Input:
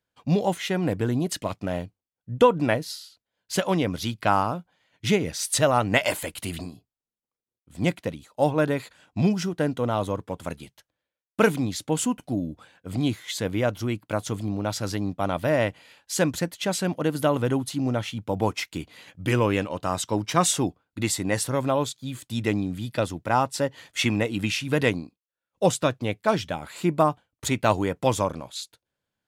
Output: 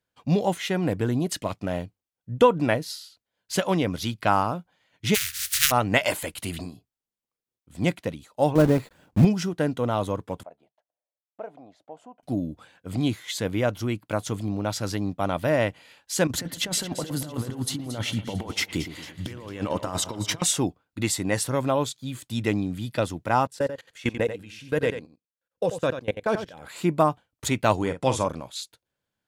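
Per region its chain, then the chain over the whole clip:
5.14–5.70 s: spectral contrast reduction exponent 0.18 + inverse Chebyshev band-stop 200–860 Hz
8.55–9.25 s: block-companded coder 3-bit + tilt shelf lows +8 dB, about 830 Hz
10.43–12.23 s: band-pass filter 680 Hz, Q 5.6 + compression 1.5:1, threshold -43 dBFS
16.27–20.42 s: band-stop 2.5 kHz, Q 13 + compressor with a negative ratio -29 dBFS, ratio -0.5 + two-band feedback delay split 2.6 kHz, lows 113 ms, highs 225 ms, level -12 dB
23.47–26.69 s: small resonant body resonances 490/1600 Hz, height 9 dB, ringing for 30 ms + level held to a coarse grid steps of 22 dB + delay 89 ms -10 dB
27.76–28.28 s: elliptic low-pass 11 kHz + doubling 45 ms -10 dB
whole clip: none

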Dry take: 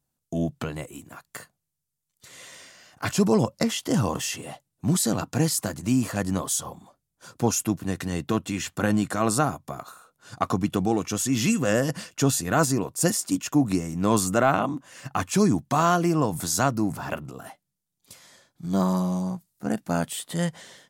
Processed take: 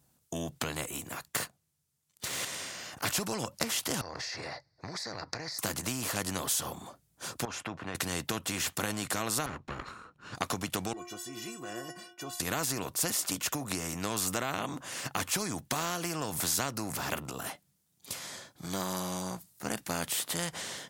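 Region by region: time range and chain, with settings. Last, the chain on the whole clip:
1.28–2.45 s: treble shelf 12 kHz -6.5 dB + waveshaping leveller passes 2
4.01–5.59 s: FFT filter 110 Hz 0 dB, 230 Hz -12 dB, 330 Hz -3 dB, 610 Hz +5 dB, 1.3 kHz -1 dB, 2 kHz +10 dB, 3.1 kHz -19 dB, 4.6 kHz +13 dB, 7.4 kHz -20 dB, 12 kHz -29 dB + compression 16:1, threshold -36 dBFS
7.45–7.95 s: low-pass 1.3 kHz + tilt shelf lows -8 dB, about 740 Hz + compression 3:1, threshold -31 dBFS
9.46–10.35 s: comb filter that takes the minimum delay 0.73 ms + tape spacing loss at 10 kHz 25 dB
10.93–12.40 s: high-pass 170 Hz + tilt shelf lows +6.5 dB, about 1.1 kHz + inharmonic resonator 350 Hz, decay 0.26 s, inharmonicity 0.008
whole clip: high-pass 47 Hz; compression, threshold -23 dBFS; spectrum-flattening compressor 2:1

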